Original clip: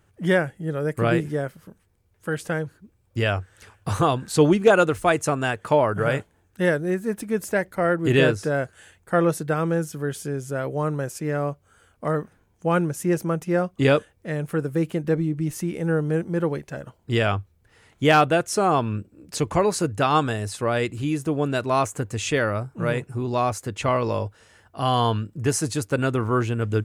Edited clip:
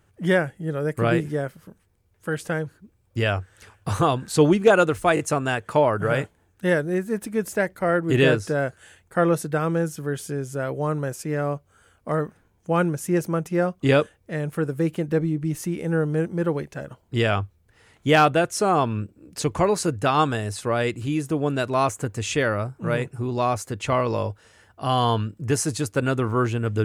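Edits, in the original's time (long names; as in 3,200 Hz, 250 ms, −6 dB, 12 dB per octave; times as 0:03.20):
0:05.15: stutter 0.02 s, 3 plays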